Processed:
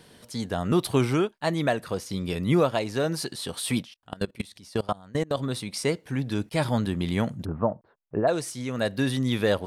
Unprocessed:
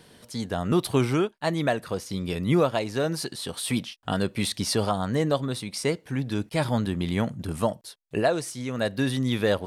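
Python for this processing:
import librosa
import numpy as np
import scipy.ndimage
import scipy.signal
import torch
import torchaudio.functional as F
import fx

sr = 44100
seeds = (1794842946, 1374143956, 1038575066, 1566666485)

y = fx.level_steps(x, sr, step_db=24, at=(3.81, 5.36), fade=0.02)
y = fx.lowpass(y, sr, hz=1400.0, slope=24, at=(7.44, 8.27), fade=0.02)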